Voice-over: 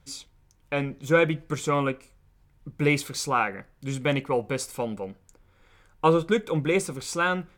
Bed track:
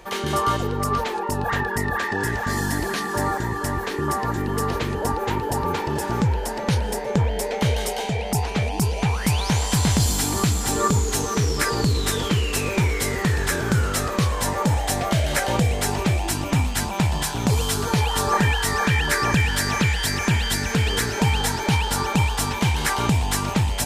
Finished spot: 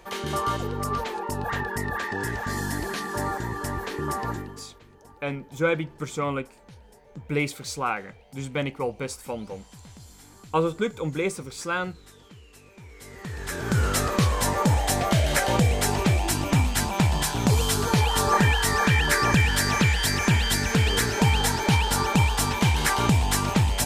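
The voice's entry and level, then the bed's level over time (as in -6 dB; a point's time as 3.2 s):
4.50 s, -3.0 dB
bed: 4.33 s -5 dB
4.71 s -27.5 dB
12.77 s -27.5 dB
13.85 s -0.5 dB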